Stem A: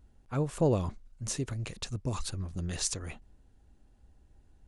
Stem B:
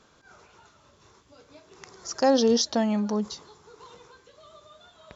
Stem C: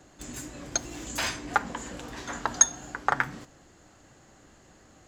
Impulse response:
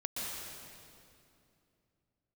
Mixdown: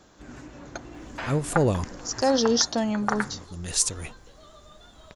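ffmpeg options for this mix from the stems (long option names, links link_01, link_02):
-filter_complex "[0:a]acontrast=89,adelay=950,volume=-2dB[link_01];[1:a]volume=-1.5dB,asplit=2[link_02][link_03];[2:a]lowpass=1800,volume=-1.5dB[link_04];[link_03]apad=whole_len=247859[link_05];[link_01][link_05]sidechaincompress=threshold=-49dB:ratio=4:attack=41:release=390[link_06];[link_06][link_02][link_04]amix=inputs=3:normalize=0,highshelf=frequency=6100:gain=11"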